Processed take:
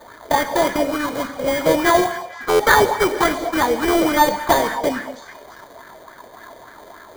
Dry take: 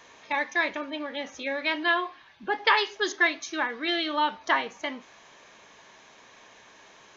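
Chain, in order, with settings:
each half-wave held at its own peak
high-frequency loss of the air 170 metres
flanger swept by the level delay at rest 3.6 ms, full sweep at −23.5 dBFS
in parallel at −10 dB: bit-depth reduction 8 bits, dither none
on the sum: asymmetric clip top −20.5 dBFS
sample-rate reduction 2,700 Hz, jitter 0%
on a send: echo through a band-pass that steps 221 ms, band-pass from 730 Hz, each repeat 1.4 octaves, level −10.5 dB
on the sum: reverb whose tail is shaped and stops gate 230 ms flat, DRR 9.5 dB
buffer that repeats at 0:02.49, samples 512, times 8
auto-filter bell 3.5 Hz 490–1,700 Hz +11 dB
level +5.5 dB

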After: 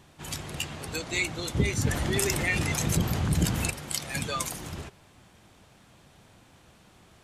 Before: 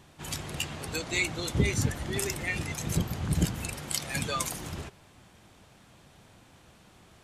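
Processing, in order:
0:01.85–0:03.71: envelope flattener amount 50%

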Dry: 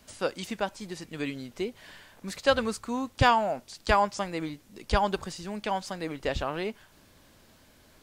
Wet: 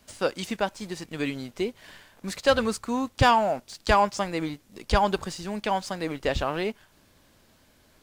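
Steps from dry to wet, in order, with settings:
leveller curve on the samples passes 1

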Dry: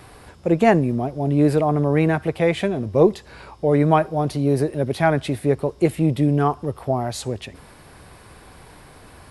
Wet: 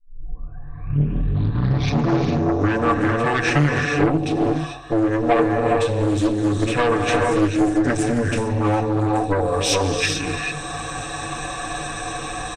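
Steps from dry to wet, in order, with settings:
turntable start at the beginning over 2.15 s
EQ curve with evenly spaced ripples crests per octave 1.7, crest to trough 16 dB
automatic gain control gain up to 10 dB
reverb whose tail is shaped and stops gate 350 ms rising, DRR 2.5 dB
harmonic generator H 5 −22 dB, 8 −19 dB, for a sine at 3 dBFS
hum removal 92.31 Hz, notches 14
wrong playback speed 45 rpm record played at 33 rpm
downward compressor, threshold −12 dBFS, peak gain reduction 8.5 dB
low-shelf EQ 450 Hz −6 dB
comb filter 7 ms, depth 90%
highs frequency-modulated by the lows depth 0.41 ms

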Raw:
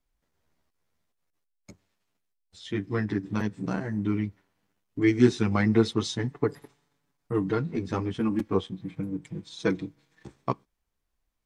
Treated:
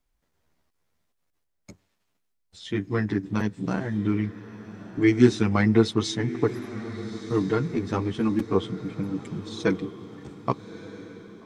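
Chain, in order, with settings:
feedback delay with all-pass diffusion 1,265 ms, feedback 45%, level −14 dB
level +2.5 dB

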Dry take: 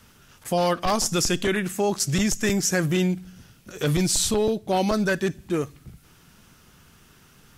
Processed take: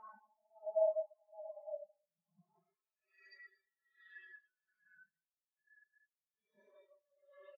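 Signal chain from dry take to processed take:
wave folding −24.5 dBFS
bass and treble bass −13 dB, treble +2 dB
comb filter 4.7 ms, depth 82%
downward compressor 5 to 1, threshold −41 dBFS, peak gain reduction 16 dB
mid-hump overdrive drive 18 dB, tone 4,300 Hz, clips at −28.5 dBFS
extreme stretch with random phases 25×, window 0.05 s, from 0:04.96
mains-hum notches 60/120/180/240 Hz
bit reduction 7 bits
amplitude tremolo 1.2 Hz, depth 65%
on a send: single-tap delay 72 ms −11.5 dB
on the sum: every bin expanded away from the loudest bin 4 to 1

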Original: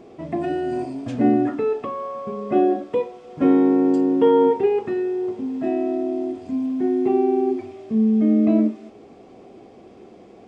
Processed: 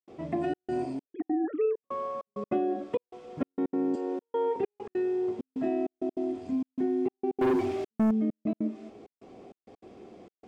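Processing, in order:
0:01.05–0:01.82: three sine waves on the formant tracks
0:03.95–0:04.56: high-pass filter 400 Hz 24 dB per octave
downward compressor 10 to 1, threshold −20 dBFS, peak gain reduction 9 dB
gate pattern ".xxxxxx..xxxx..x" 197 BPM −60 dB
0:07.41–0:08.11: leveller curve on the samples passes 3
level −4 dB

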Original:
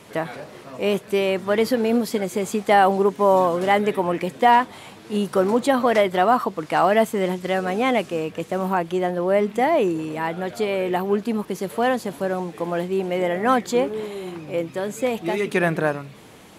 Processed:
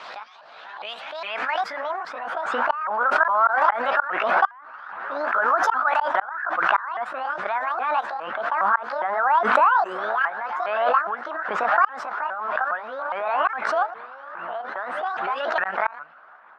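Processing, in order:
pitch shifter swept by a sawtooth +9.5 semitones, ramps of 410 ms
band-pass filter sweep 4,600 Hz → 1,500 Hz, 0:00.33–0:01.98
gate with flip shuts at −16 dBFS, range −32 dB
harmonic and percussive parts rebalanced percussive +6 dB
low-pass that shuts in the quiet parts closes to 2,200 Hz, open at −22 dBFS
flat-topped bell 980 Hz +12 dB
background raised ahead of every attack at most 35 dB per second
level −6.5 dB

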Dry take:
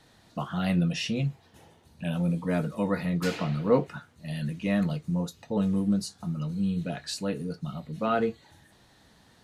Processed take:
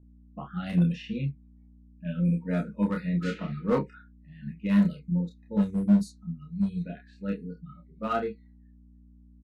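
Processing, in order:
thirty-one-band graphic EQ 200 Hz +7 dB, 1,250 Hz +4 dB, 5,000 Hz −5 dB
noise reduction from a noise print of the clip's start 24 dB
low-shelf EQ 78 Hz −5 dB
mains hum 60 Hz, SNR 18 dB
low-pass that shuts in the quiet parts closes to 760 Hz, open at −18 dBFS
gain into a clipping stage and back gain 16.5 dB
double-tracking delay 29 ms −3 dB
expander for the loud parts 1.5 to 1, over −32 dBFS
level −1.5 dB

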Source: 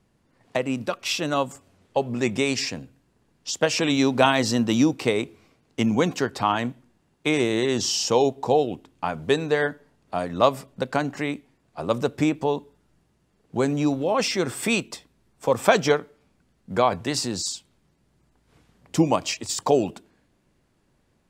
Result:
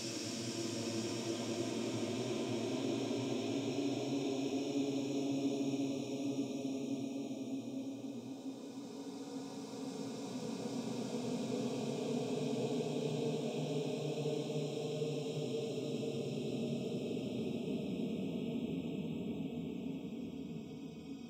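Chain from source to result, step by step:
compressor on every frequency bin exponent 0.4
guitar amp tone stack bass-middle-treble 10-0-1
flanger 1.1 Hz, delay 2.9 ms, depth 2.1 ms, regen +5%
noise reduction from a noise print of the clip's start 27 dB
extreme stretch with random phases 28×, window 0.25 s, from 0:08.07
level +1.5 dB

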